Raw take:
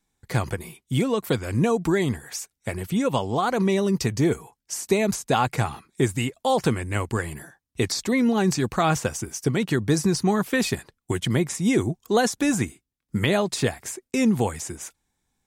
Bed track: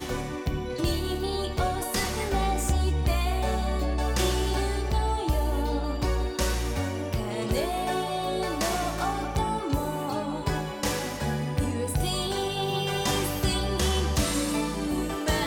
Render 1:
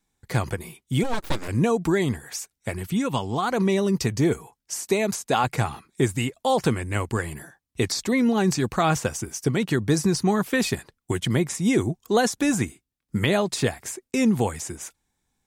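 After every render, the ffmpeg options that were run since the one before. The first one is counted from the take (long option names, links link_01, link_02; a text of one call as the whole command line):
ffmpeg -i in.wav -filter_complex "[0:a]asplit=3[link_01][link_02][link_03];[link_01]afade=type=out:start_time=1.03:duration=0.02[link_04];[link_02]aeval=exprs='abs(val(0))':channel_layout=same,afade=type=in:start_time=1.03:duration=0.02,afade=type=out:start_time=1.47:duration=0.02[link_05];[link_03]afade=type=in:start_time=1.47:duration=0.02[link_06];[link_04][link_05][link_06]amix=inputs=3:normalize=0,asettb=1/sr,asplit=3[link_07][link_08][link_09];[link_07]atrim=end=2.734[link_10];[link_08]atrim=start=2.73:end=3.51,asetpts=PTS-STARTPTS,afade=type=in:duration=0.004:curve=qsin,afade=type=out:start_time=0.776:duration=0.004:curve=qsin,equalizer=frequency=550:width_type=o:width=0.77:gain=-6.5[link_11];[link_09]atrim=start=3.506[link_12];[link_10][link_11]acrossfade=duration=0.004:curve1=hsin:curve2=qsin[link_13];[link_13][link_12]acrossfade=duration=0.004:curve1=qsin:curve2=hsin,asettb=1/sr,asplit=3[link_14][link_15][link_16];[link_14]atrim=end=4.814[link_17];[link_15]atrim=start=4.81:end=5.44,asetpts=PTS-STARTPTS,afade=type=in:duration=0.004:curve=qsin,afade=type=out:start_time=0.626:duration=0.004:curve=qsin,lowshelf=frequency=130:gain=-11[link_18];[link_16]atrim=start=5.436[link_19];[link_17][link_18]acrossfade=duration=0.004:curve1=hsin:curve2=qsin[link_20];[link_20][link_19]acrossfade=duration=0.004:curve1=qsin:curve2=hsin" out.wav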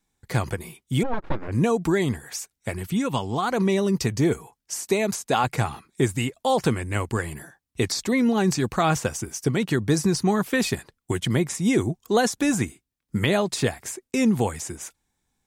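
ffmpeg -i in.wav -filter_complex "[0:a]asettb=1/sr,asplit=3[link_01][link_02][link_03];[link_01]atrim=end=1.034[link_04];[link_02]atrim=start=1.03:end=1.52,asetpts=PTS-STARTPTS,afade=type=in:duration=0.004:curve=qsin,afade=type=out:start_time=0.486:duration=0.004:curve=qsin,lowpass=1600[link_05];[link_03]atrim=start=1.516[link_06];[link_04][link_05]acrossfade=duration=0.004:curve1=hsin:curve2=qsin[link_07];[link_07][link_06]acrossfade=duration=0.004:curve1=qsin:curve2=hsin" out.wav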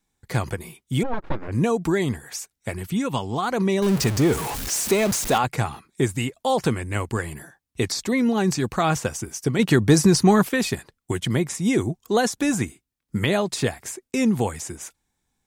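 ffmpeg -i in.wav -filter_complex "[0:a]asettb=1/sr,asplit=3[link_01][link_02][link_03];[link_01]atrim=end=3.824[link_04];[link_02]atrim=start=3.82:end=5.38,asetpts=PTS-STARTPTS,afade=type=in:duration=0.004:curve=qsin,afade=type=out:start_time=1.556:duration=0.004:curve=qsin,aeval=exprs='val(0)+0.5*0.0708*sgn(val(0))':channel_layout=same[link_05];[link_03]atrim=start=5.376[link_06];[link_04][link_05]acrossfade=duration=0.004:curve1=hsin:curve2=qsin[link_07];[link_07][link_06]acrossfade=duration=0.004:curve1=qsin:curve2=hsin,asettb=1/sr,asplit=3[link_08][link_09][link_10];[link_08]atrim=end=9.594[link_11];[link_09]atrim=start=9.59:end=10.49,asetpts=PTS-STARTPTS,afade=type=in:duration=0.004:curve=qsin,afade=type=out:start_time=0.896:duration=0.004:curve=qsin,acontrast=57[link_12];[link_10]atrim=start=10.486[link_13];[link_11][link_12]acrossfade=duration=0.004:curve1=hsin:curve2=qsin[link_14];[link_14][link_13]acrossfade=duration=0.004:curve1=qsin:curve2=hsin" out.wav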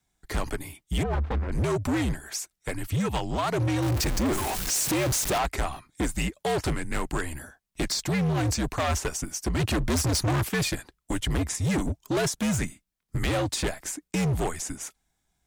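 ffmpeg -i in.wav -af "afreqshift=-74,volume=22.5dB,asoftclip=hard,volume=-22.5dB" out.wav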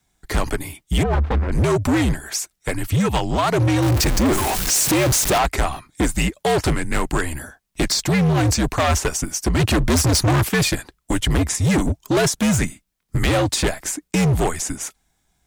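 ffmpeg -i in.wav -af "volume=8dB" out.wav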